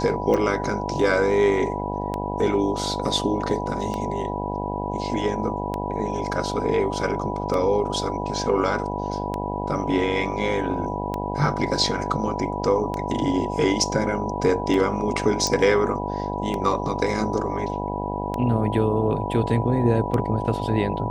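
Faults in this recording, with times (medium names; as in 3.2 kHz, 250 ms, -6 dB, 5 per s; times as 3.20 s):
buzz 50 Hz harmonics 17 -29 dBFS
tick 33 1/3 rpm -14 dBFS
whine 980 Hz -30 dBFS
15.47 s: pop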